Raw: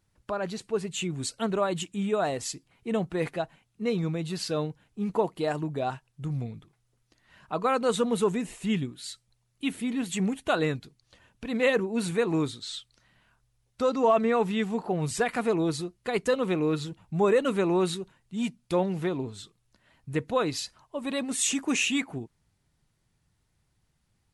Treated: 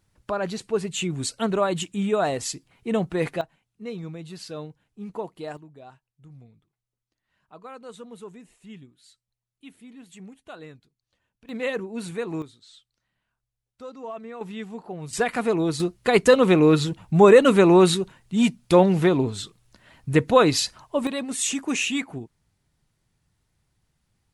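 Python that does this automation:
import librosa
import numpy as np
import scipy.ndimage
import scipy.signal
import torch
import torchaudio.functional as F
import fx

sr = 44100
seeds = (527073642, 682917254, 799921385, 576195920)

y = fx.gain(x, sr, db=fx.steps((0.0, 4.0), (3.41, -6.5), (5.57, -16.0), (11.49, -4.0), (12.42, -14.0), (14.41, -7.0), (15.13, 3.0), (15.8, 10.0), (21.07, 1.0)))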